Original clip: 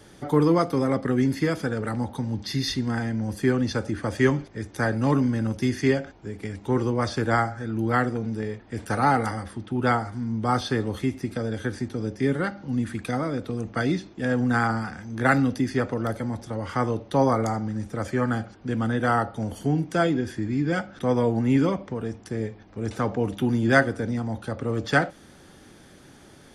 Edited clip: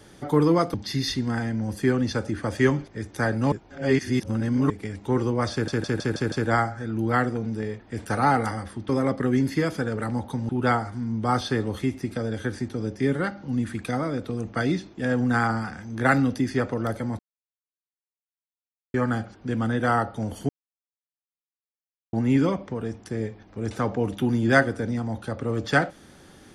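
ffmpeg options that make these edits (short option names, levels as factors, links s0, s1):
-filter_complex "[0:a]asplit=15[s0][s1][s2][s3][s4][s5][s6][s7][s8][s9][s10][s11][s12][s13][s14];[s0]atrim=end=0.742[s15];[s1]atrim=start=2.338:end=5.122[s16];[s2]atrim=start=5.118:end=6.302,asetpts=PTS-STARTPTS,areverse[s17];[s3]atrim=start=6.298:end=7.282[s18];[s4]atrim=start=7.118:end=7.282[s19];[s5]atrim=start=7.118:end=7.282[s20];[s6]atrim=start=7.118:end=7.282[s21];[s7]atrim=start=7.118:end=7.282[s22];[s8]atrim=start=7.118:end=9.692[s23];[s9]atrim=start=0.738:end=2.342[s24];[s10]atrim=start=9.688:end=16.39,asetpts=PTS-STARTPTS,afade=t=out:st=6.698:d=0.004:c=hsin[s25];[s11]atrim=start=16.39:end=18.14,asetpts=PTS-STARTPTS,volume=0[s26];[s12]atrim=start=18.14:end=19.69,asetpts=PTS-STARTPTS,afade=t=in:d=0.004:c=hsin,afade=t=out:st=1.546:d=0.004:c=hsin[s27];[s13]atrim=start=19.69:end=21.33,asetpts=PTS-STARTPTS,volume=0[s28];[s14]atrim=start=21.33,asetpts=PTS-STARTPTS,afade=t=in:d=0.004:c=hsin[s29];[s15][s16]acrossfade=d=0.004:c1=hsin:c2=hsin[s30];[s30][s17]acrossfade=d=0.004:c1=hsin:c2=hsin[s31];[s31][s18]acrossfade=d=0.004:c1=hsin:c2=hsin[s32];[s32][s19]acrossfade=d=0.004:c1=hsin:c2=hsin[s33];[s33][s20]acrossfade=d=0.004:c1=hsin:c2=hsin[s34];[s34][s21]acrossfade=d=0.004:c1=hsin:c2=hsin[s35];[s35][s22]acrossfade=d=0.004:c1=hsin:c2=hsin[s36];[s36][s23]acrossfade=d=0.004:c1=hsin:c2=hsin[s37];[s37][s24]acrossfade=d=0.004:c1=hsin:c2=hsin[s38];[s25][s26][s27][s28][s29]concat=n=5:v=0:a=1[s39];[s38][s39]acrossfade=d=0.004:c1=hsin:c2=hsin"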